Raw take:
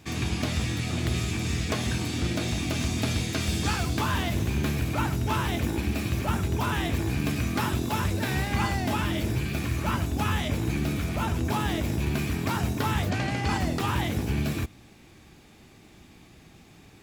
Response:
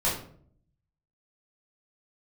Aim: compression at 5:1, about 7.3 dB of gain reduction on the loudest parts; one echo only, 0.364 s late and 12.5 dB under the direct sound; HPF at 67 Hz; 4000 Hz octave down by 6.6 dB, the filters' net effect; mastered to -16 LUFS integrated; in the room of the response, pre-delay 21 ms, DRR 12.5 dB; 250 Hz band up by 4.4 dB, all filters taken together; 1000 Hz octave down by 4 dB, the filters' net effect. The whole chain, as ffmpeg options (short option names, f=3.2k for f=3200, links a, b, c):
-filter_complex "[0:a]highpass=67,equalizer=f=250:t=o:g=6,equalizer=f=1k:t=o:g=-5,equalizer=f=4k:t=o:g=-8.5,acompressor=threshold=-29dB:ratio=5,aecho=1:1:364:0.237,asplit=2[a][b];[1:a]atrim=start_sample=2205,adelay=21[c];[b][c]afir=irnorm=-1:irlink=0,volume=-23dB[d];[a][d]amix=inputs=2:normalize=0,volume=16dB"